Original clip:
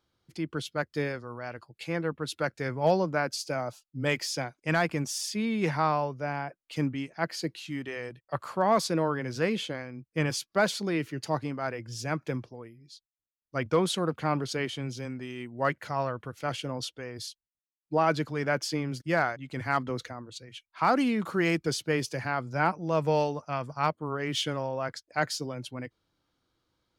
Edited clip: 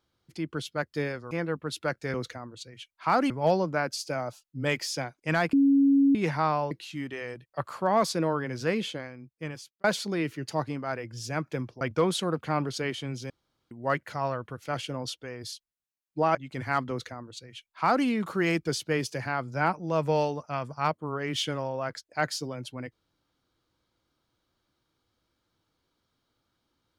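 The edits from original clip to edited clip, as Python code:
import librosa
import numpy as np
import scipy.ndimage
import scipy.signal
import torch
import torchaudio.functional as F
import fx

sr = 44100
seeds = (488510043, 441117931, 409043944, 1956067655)

y = fx.edit(x, sr, fx.cut(start_s=1.31, length_s=0.56),
    fx.bleep(start_s=4.93, length_s=0.62, hz=277.0, db=-17.0),
    fx.cut(start_s=6.11, length_s=1.35),
    fx.fade_out_span(start_s=9.58, length_s=1.01),
    fx.cut(start_s=12.56, length_s=1.0),
    fx.room_tone_fill(start_s=15.05, length_s=0.41),
    fx.cut(start_s=18.1, length_s=1.24),
    fx.duplicate(start_s=19.89, length_s=1.16, to_s=2.7), tone=tone)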